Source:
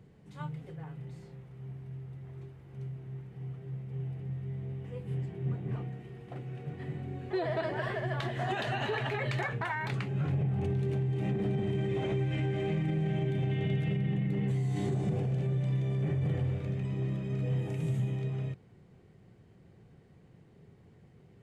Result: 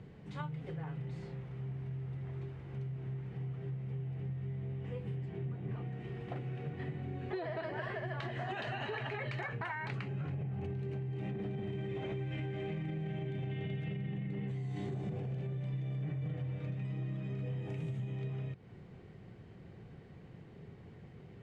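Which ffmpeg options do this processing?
ffmpeg -i in.wav -filter_complex "[0:a]asettb=1/sr,asplit=3[link_01][link_02][link_03];[link_01]atrim=end=7.374[link_04];[link_02]atrim=start=7.37:end=11.19,asetpts=PTS-STARTPTS,afade=type=in:duration=0.004:curve=qsin,afade=type=out:start_time=3.816:duration=0.004:curve=qsin,bandreject=frequency=3500:width=12[link_05];[link_03]atrim=start=11.186[link_06];[link_04][link_05]acrossfade=duration=0.004:curve1=hsin:curve2=qsin[link_07];[link_07][link_06]acrossfade=duration=0.004:curve1=qsin:curve2=hsin,asettb=1/sr,asplit=3[link_08][link_09][link_10];[link_08]atrim=end=15.734[link_11];[link_09]atrim=start=15.73:end=17.3,asetpts=PTS-STARTPTS,afade=type=in:duration=0.004:curve=qsin,afade=type=out:start_time=1.566:duration=0.004:curve=qsin,aecho=1:1:6.5:0.65,atrim=end_sample=69237[link_12];[link_10]atrim=start=17.296[link_13];[link_11][link_12]acrossfade=duration=0.004:curve1=hsin:curve2=qsin[link_14];[link_14][link_13]acrossfade=duration=0.004:curve1=qsin:curve2=hsin,lowpass=2800,aemphasis=mode=production:type=75kf,acompressor=threshold=-42dB:ratio=6,volume=5dB" out.wav

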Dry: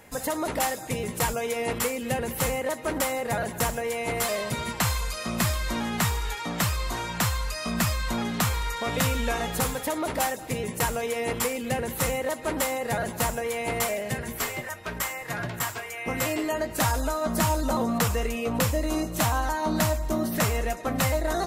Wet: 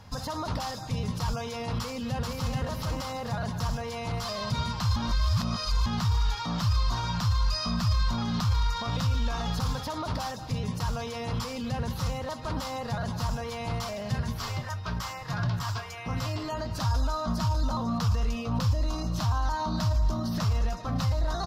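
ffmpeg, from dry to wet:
ffmpeg -i in.wav -filter_complex "[0:a]asplit=2[link_01][link_02];[link_02]afade=type=in:start_time=1.8:duration=0.01,afade=type=out:start_time=2.61:duration=0.01,aecho=0:1:430|860|1290:0.944061|0.141609|0.0212414[link_03];[link_01][link_03]amix=inputs=2:normalize=0,asplit=3[link_04][link_05][link_06];[link_04]atrim=end=4.962[link_07];[link_05]atrim=start=4.958:end=5.862,asetpts=PTS-STARTPTS,areverse[link_08];[link_06]atrim=start=5.858[link_09];[link_07][link_08]acrossfade=duration=0.004:curve1=hsin:curve2=hsin[link_10];[link_10][link_09]acrossfade=duration=0.004:curve1=hsin:curve2=hsin,equalizer=frequency=99:width_type=o:width=0.24:gain=9.5,alimiter=limit=-23.5dB:level=0:latency=1:release=18,firequalizer=gain_entry='entry(140,0);entry(350,-16);entry(1100,-3);entry(2000,-17);entry(3200,-7);entry(5000,0);entry(8000,-21)':delay=0.05:min_phase=1,volume=7.5dB" out.wav

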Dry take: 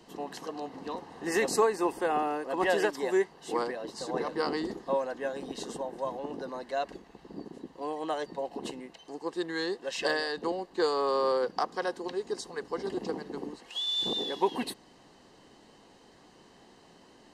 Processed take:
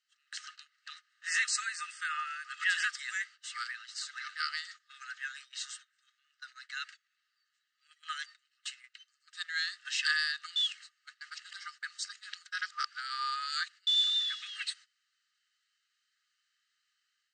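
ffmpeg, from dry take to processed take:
ffmpeg -i in.wav -filter_complex "[0:a]asplit=3[link_01][link_02][link_03];[link_01]atrim=end=10.562[link_04];[link_02]atrim=start=10.558:end=13.872,asetpts=PTS-STARTPTS,areverse[link_05];[link_03]atrim=start=13.868[link_06];[link_04][link_05]acrossfade=duration=0.004:curve1=hsin:curve2=hsin[link_07];[link_07][link_06]acrossfade=duration=0.004:curve1=hsin:curve2=hsin,afftfilt=real='re*between(b*sr/4096,1200,8800)':imag='im*between(b*sr/4096,1200,8800)':win_size=4096:overlap=0.75,agate=range=-19dB:threshold=-53dB:ratio=16:detection=peak,dynaudnorm=framelen=190:gausssize=3:maxgain=5.5dB,volume=-2dB" out.wav

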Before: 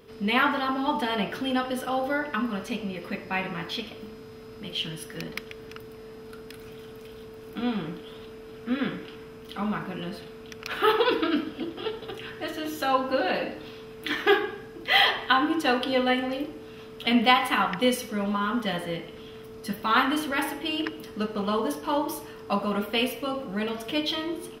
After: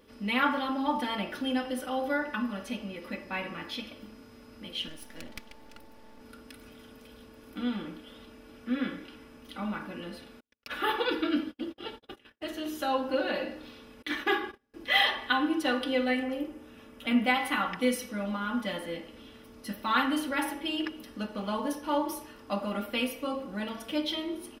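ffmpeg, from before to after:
ffmpeg -i in.wav -filter_complex "[0:a]asettb=1/sr,asplit=3[link_01][link_02][link_03];[link_01]atrim=end=4.884[link_04];[link_02]atrim=start=4.88:end=6.21,asetpts=PTS-STARTPTS,afade=type=in:duration=0.004:curve=qsin,afade=type=out:start_time=1.326:duration=0.004:curve=qsin,aeval=exprs='max(val(0),0)':channel_layout=same[link_05];[link_03]atrim=start=6.206[link_06];[link_04][link_05]acrossfade=duration=0.004:curve1=hsin:curve2=qsin[link_07];[link_07][link_06]acrossfade=duration=0.004:curve1=qsin:curve2=hsin,asettb=1/sr,asplit=3[link_08][link_09][link_10];[link_08]atrim=end=10.404[link_11];[link_09]atrim=start=10.4:end=12.53,asetpts=PTS-STARTPTS,afade=type=in:duration=0.004:curve=qsin,afade=type=out:start_time=2.126:duration=0.004:curve=qsin,agate=range=-46dB:threshold=-37dB:ratio=16:release=100:detection=peak[link_12];[link_10]atrim=start=12.526[link_13];[link_11][link_12]acrossfade=duration=0.004:curve1=hsin:curve2=qsin[link_14];[link_14][link_13]acrossfade=duration=0.004:curve1=qsin:curve2=hsin,asettb=1/sr,asplit=3[link_15][link_16][link_17];[link_15]atrim=end=14.024[link_18];[link_16]atrim=start=14.02:end=14.74,asetpts=PTS-STARTPTS,afade=type=in:duration=0.004:curve=qsin,afade=type=out:start_time=0.716:duration=0.004:curve=qsin,agate=range=-28dB:threshold=-36dB:ratio=16:release=100:detection=peak[link_19];[link_17]atrim=start=14.736[link_20];[link_18][link_19]acrossfade=duration=0.004:curve1=hsin:curve2=qsin[link_21];[link_21][link_20]acrossfade=duration=0.004:curve1=qsin:curve2=hsin,asettb=1/sr,asplit=3[link_22][link_23][link_24];[link_22]atrim=end=16.234[link_25];[link_23]atrim=start=16.23:end=17.34,asetpts=PTS-STARTPTS,afade=type=in:duration=0.004:curve=qsin,afade=type=out:start_time=1.106:duration=0.004:curve=qsin,equalizer=frequency=4200:width=1.9:gain=-7.5[link_26];[link_24]atrim=start=17.336[link_27];[link_25][link_26]acrossfade=duration=0.004:curve1=hsin:curve2=qsin[link_28];[link_28][link_27]acrossfade=duration=0.004:curve1=qsin:curve2=hsin,equalizer=frequency=9500:width=4.4:gain=3.5,aecho=1:1:3.5:0.63,volume=-6dB" out.wav

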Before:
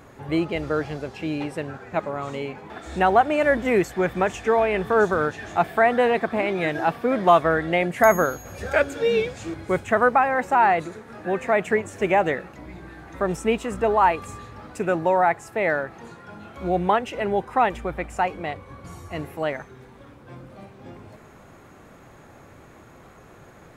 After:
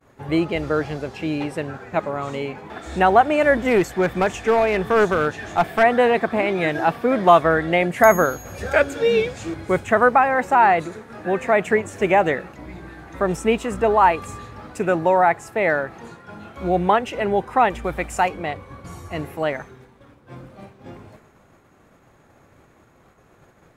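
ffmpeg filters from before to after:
ffmpeg -i in.wav -filter_complex "[0:a]asplit=3[link_01][link_02][link_03];[link_01]afade=type=out:start_time=3.55:duration=0.02[link_04];[link_02]aeval=exprs='clip(val(0),-1,0.168)':channel_layout=same,afade=type=in:start_time=3.55:duration=0.02,afade=type=out:start_time=5.82:duration=0.02[link_05];[link_03]afade=type=in:start_time=5.82:duration=0.02[link_06];[link_04][link_05][link_06]amix=inputs=3:normalize=0,asettb=1/sr,asplit=3[link_07][link_08][link_09];[link_07]atrim=end=17.844[link_10];[link_08]atrim=start=17.84:end=18.29,asetpts=PTS-STARTPTS,afade=type=in:duration=0.004:curve=qsin,afade=type=out:start_time=0.446:duration=0.004:curve=qsin,highshelf=frequency=3800:gain=9.5[link_11];[link_09]atrim=start=18.286[link_12];[link_10][link_11]acrossfade=duration=0.004:curve1=hsin:curve2=qsin[link_13];[link_13][link_12]acrossfade=duration=0.004:curve1=qsin:curve2=hsin,agate=range=-33dB:threshold=-40dB:ratio=3:detection=peak,volume=3dB" out.wav

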